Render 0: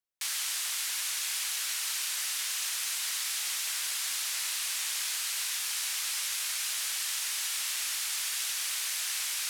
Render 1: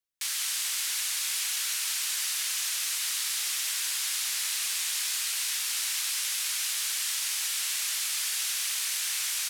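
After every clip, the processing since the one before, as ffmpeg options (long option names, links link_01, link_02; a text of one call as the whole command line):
ffmpeg -i in.wav -filter_complex "[0:a]equalizer=frequency=580:width_type=o:width=2.5:gain=-5.5,asplit=7[link_01][link_02][link_03][link_04][link_05][link_06][link_07];[link_02]adelay=186,afreqshift=-100,volume=-8dB[link_08];[link_03]adelay=372,afreqshift=-200,volume=-13.8dB[link_09];[link_04]adelay=558,afreqshift=-300,volume=-19.7dB[link_10];[link_05]adelay=744,afreqshift=-400,volume=-25.5dB[link_11];[link_06]adelay=930,afreqshift=-500,volume=-31.4dB[link_12];[link_07]adelay=1116,afreqshift=-600,volume=-37.2dB[link_13];[link_01][link_08][link_09][link_10][link_11][link_12][link_13]amix=inputs=7:normalize=0,volume=2dB" out.wav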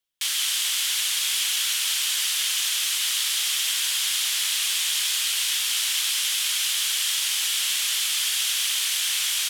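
ffmpeg -i in.wav -af "equalizer=frequency=3200:width_type=o:width=0.42:gain=9,volume=4dB" out.wav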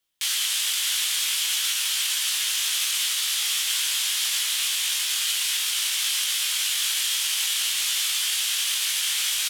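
ffmpeg -i in.wav -filter_complex "[0:a]alimiter=limit=-21.5dB:level=0:latency=1,asplit=2[link_01][link_02];[link_02]adelay=19,volume=-4dB[link_03];[link_01][link_03]amix=inputs=2:normalize=0,volume=4.5dB" out.wav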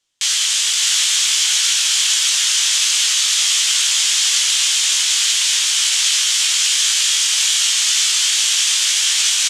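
ffmpeg -i in.wav -af "lowpass=frequency=7000:width_type=q:width=2,aecho=1:1:578:0.562,volume=5.5dB" out.wav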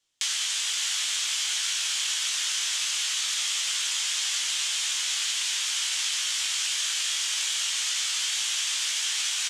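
ffmpeg -i in.wav -filter_complex "[0:a]flanger=delay=6.3:depth=7.3:regen=-65:speed=0.23:shape=sinusoidal,acrossover=split=900|2400[link_01][link_02][link_03];[link_01]acompressor=threshold=-54dB:ratio=4[link_04];[link_02]acompressor=threshold=-36dB:ratio=4[link_05];[link_03]acompressor=threshold=-28dB:ratio=4[link_06];[link_04][link_05][link_06]amix=inputs=3:normalize=0" out.wav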